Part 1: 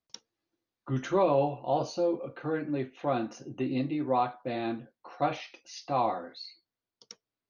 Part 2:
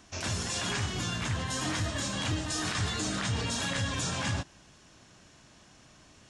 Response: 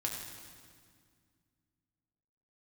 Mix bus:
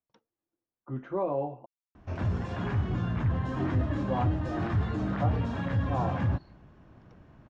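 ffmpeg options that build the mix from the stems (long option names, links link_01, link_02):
-filter_complex "[0:a]volume=-5dB,asplit=3[link_01][link_02][link_03];[link_01]atrim=end=1.66,asetpts=PTS-STARTPTS,afade=type=out:start_time=1.656:duration=0.004:curve=hsin[link_04];[link_02]atrim=start=1.66:end=3.46,asetpts=PTS-STARTPTS,volume=0[link_05];[link_03]atrim=start=3.46,asetpts=PTS-STARTPTS,afade=type=in:duration=0.004:curve=hsin[link_06];[link_04][link_05][link_06]concat=n=3:v=0:a=1[link_07];[1:a]lowshelf=frequency=240:gain=8,asoftclip=type=tanh:threshold=-18dB,adelay=1950,volume=0.5dB[link_08];[link_07][link_08]amix=inputs=2:normalize=0,lowpass=1300"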